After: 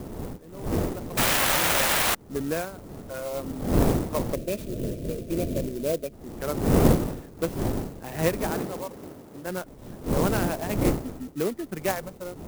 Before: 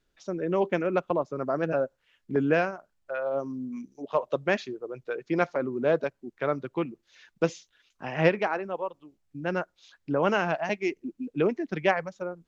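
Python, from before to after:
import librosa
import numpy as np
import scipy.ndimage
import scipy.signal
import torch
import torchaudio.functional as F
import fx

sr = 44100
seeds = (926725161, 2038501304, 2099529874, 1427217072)

p1 = fx.fade_in_head(x, sr, length_s=3.36)
p2 = fx.dmg_wind(p1, sr, seeds[0], corner_hz=380.0, level_db=-27.0)
p3 = fx.spec_paint(p2, sr, seeds[1], shape='noise', start_s=1.17, length_s=0.98, low_hz=500.0, high_hz=4400.0, level_db=-19.0)
p4 = fx.highpass(p3, sr, hz=240.0, slope=6, at=(8.51, 9.5))
p5 = fx.sample_hold(p4, sr, seeds[2], rate_hz=1600.0, jitter_pct=0)
p6 = p4 + (p5 * 10.0 ** (-11.0 / 20.0))
p7 = fx.spec_erase(p6, sr, start_s=4.35, length_s=1.77, low_hz=710.0, high_hz=2300.0)
p8 = fx.clock_jitter(p7, sr, seeds[3], jitter_ms=0.063)
y = p8 * 10.0 ** (-4.0 / 20.0)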